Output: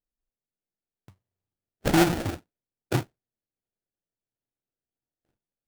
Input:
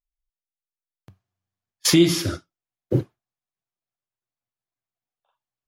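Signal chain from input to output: sample-rate reducer 1100 Hz, jitter 20%; gain -4.5 dB

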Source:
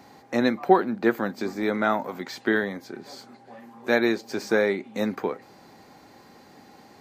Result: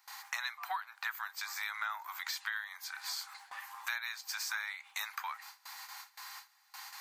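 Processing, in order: steep high-pass 940 Hz 48 dB/oct; gate with hold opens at -46 dBFS; high shelf 7500 Hz +11.5 dB; compressor 6:1, threshold -44 dBFS, peak gain reduction 21 dB; gain +7.5 dB

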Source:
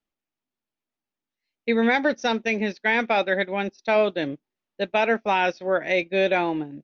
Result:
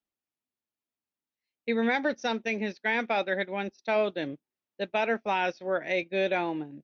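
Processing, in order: HPF 41 Hz; gain -6 dB

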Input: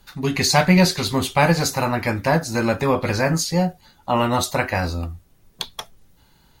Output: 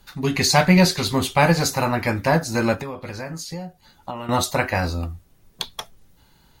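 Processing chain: 2.74–4.29 compressor 8:1, threshold -29 dBFS, peak gain reduction 15 dB

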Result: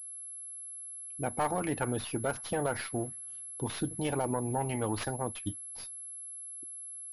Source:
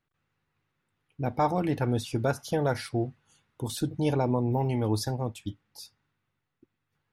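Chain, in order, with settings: tracing distortion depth 0.18 ms; harmonic-percussive split percussive +8 dB; limiter -15 dBFS, peak gain reduction 9 dB; dynamic EQ 1400 Hz, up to +5 dB, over -42 dBFS, Q 0.72; pulse-width modulation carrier 11000 Hz; gain -8 dB

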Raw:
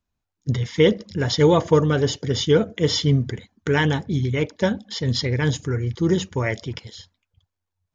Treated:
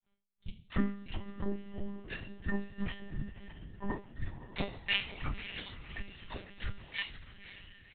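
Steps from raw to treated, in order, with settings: delay-line pitch shifter -10 st; treble ducked by the level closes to 800 Hz, closed at -14 dBFS; dynamic EQ 2600 Hz, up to +4 dB, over -44 dBFS, Q 1.2; comb 2.2 ms, depth 79%; compressor 6:1, threshold -29 dBFS, peak gain reduction 16 dB; grains 0.194 s, grains 2.9/s, spray 21 ms, pitch spread up and down by 0 st; resonator 130 Hz, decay 0.35 s, harmonics all, mix 90%; diffused feedback echo 0.55 s, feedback 45%, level -11.5 dB; reverb RT60 1.4 s, pre-delay 31 ms, DRR 14.5 dB; monotone LPC vocoder at 8 kHz 200 Hz; gain +13.5 dB

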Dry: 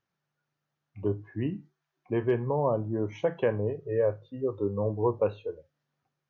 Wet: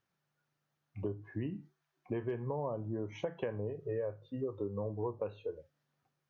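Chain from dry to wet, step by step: compressor 6:1, threshold -34 dBFS, peak gain reduction 13 dB

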